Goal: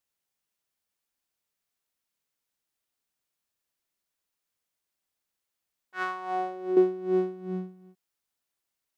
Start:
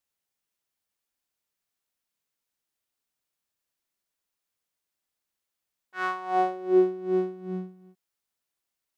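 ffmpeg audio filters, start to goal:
-filter_complex "[0:a]asettb=1/sr,asplit=3[a][b][c];[a]atrim=end=6.024[d];[b]atrim=start=6.02:end=6.77,asetpts=PTS-STARTPTS,afade=t=in:d=0.004:c=qsin,afade=t=out:st=0.746:d=0.004:c=qsin,acompressor=threshold=-28dB:ratio=3[e];[c]atrim=start=6.766[f];[d][e]acrossfade=d=0.004:c1=hsin:c2=qsin[g];[g][f]acrossfade=d=0.004:c1=qsin:c2=hsin"

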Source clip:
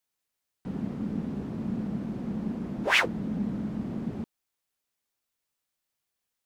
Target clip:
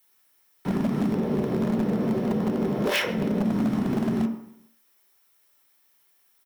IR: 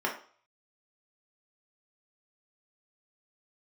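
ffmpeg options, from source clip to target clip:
-filter_complex "[0:a]acompressor=threshold=-30dB:ratio=6,asettb=1/sr,asplit=3[a][b][c];[a]atrim=end=1.124[d];[b]atrim=start=1.12:end=3.45,asetpts=PTS-STARTPTS,afade=t=in:d=0.004:c=qsin,afade=t=out:st=2.326:d=0.004:c=qsin,equalizer=f=250:t=o:w=1:g=-4,equalizer=f=500:t=o:w=1:g=11,equalizer=f=8k:t=o:w=1:g=-6[e];[c]atrim=start=3.446[f];[d][e]acrossfade=d=0.004:c1=hsin:c2=qsin[g];[g][f]acrossfade=d=0.004:c1=qsin:c2=hsin,aecho=1:1:134|268|402:0.1|0.039|0.0152[h];[1:a]atrim=start_sample=2205[i];[h][i]afir=irnorm=-1:irlink=0,acrossover=split=240|3000[j][k][l];[k]acompressor=threshold=-34dB:ratio=5[m];[j][m][l]amix=inputs=3:normalize=0,aeval=exprs='0.0668*(abs(mod(val(0)/0.0668+3,4)-2)-1)':c=same,aemphasis=mode=production:type=75kf,volume=5.5dB"

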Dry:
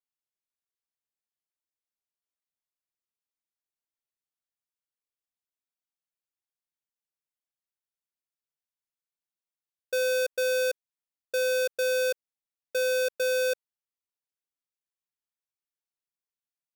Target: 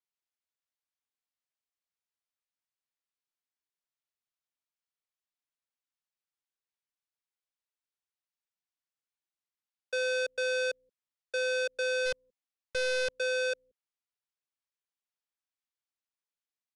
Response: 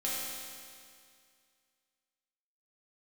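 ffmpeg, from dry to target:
-filter_complex "[0:a]acrossover=split=220|670|5900[a][b][c][d];[a]aecho=1:1:177:0.422[e];[c]acontrast=79[f];[d]asoftclip=type=tanh:threshold=-37.5dB[g];[e][b][f][g]amix=inputs=4:normalize=0,asplit=3[h][i][j];[h]afade=t=out:st=12.05:d=0.02[k];[i]aeval=exprs='0.112*(cos(1*acos(clip(val(0)/0.112,-1,1)))-cos(1*PI/2))+0.0251*(cos(6*acos(clip(val(0)/0.112,-1,1)))-cos(6*PI/2))':c=same,afade=t=in:st=12.05:d=0.02,afade=t=out:st=13.16:d=0.02[l];[j]afade=t=in:st=13.16:d=0.02[m];[k][l][m]amix=inputs=3:normalize=0,aresample=22050,aresample=44100,volume=-7.5dB"

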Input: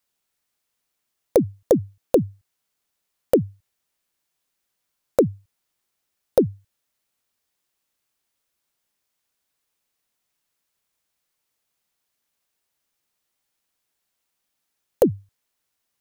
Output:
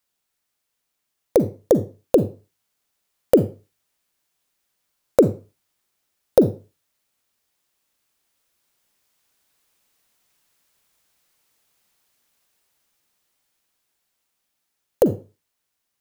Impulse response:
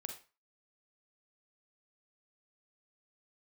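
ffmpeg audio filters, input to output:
-filter_complex "[0:a]dynaudnorm=f=360:g=13:m=10dB,asplit=2[a][b];[1:a]atrim=start_sample=2205[c];[b][c]afir=irnorm=-1:irlink=0,volume=0.5dB[d];[a][d]amix=inputs=2:normalize=0,volume=-4.5dB"

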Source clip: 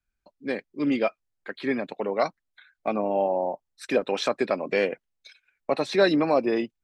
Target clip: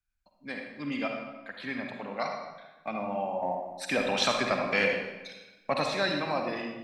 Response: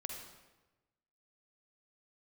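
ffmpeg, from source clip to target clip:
-filter_complex "[0:a]asettb=1/sr,asplit=3[a][b][c];[a]atrim=end=3.424[d];[b]atrim=start=3.42:end=5.86,asetpts=PTS-STARTPTS,afade=t=in:d=0.004:c=qsin,afade=t=out:st=2.436:d=0.004:c=qsin,acontrast=64[e];[c]atrim=start=5.856[f];[d][e]acrossfade=d=0.004:c1=hsin:c2=qsin[g];[g][f]acrossfade=d=0.004:c1=qsin:c2=hsin,equalizer=f=400:t=o:w=1.1:g=-15[h];[1:a]atrim=start_sample=2205[i];[h][i]afir=irnorm=-1:irlink=0"

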